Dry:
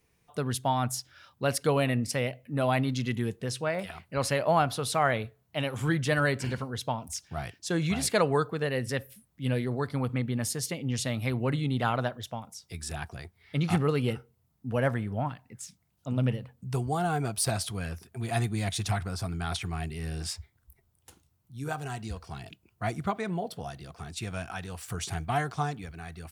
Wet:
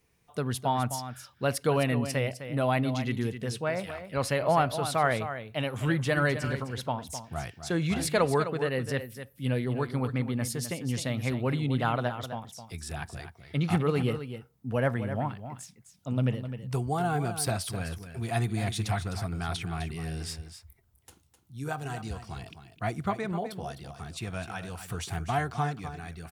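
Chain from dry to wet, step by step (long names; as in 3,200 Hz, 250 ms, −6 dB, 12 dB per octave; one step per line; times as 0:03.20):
dynamic equaliser 6,800 Hz, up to −4 dB, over −48 dBFS, Q 0.76
on a send: single-tap delay 257 ms −10.5 dB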